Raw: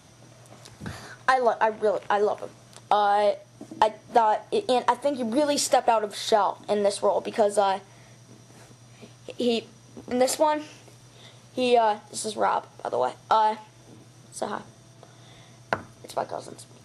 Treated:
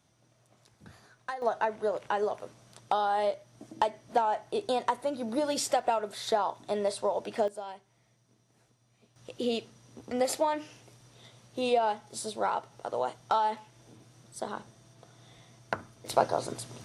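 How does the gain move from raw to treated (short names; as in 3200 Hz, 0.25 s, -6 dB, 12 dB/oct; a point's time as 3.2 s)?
-16 dB
from 1.42 s -6.5 dB
from 7.48 s -18 dB
from 9.16 s -6 dB
from 16.06 s +4 dB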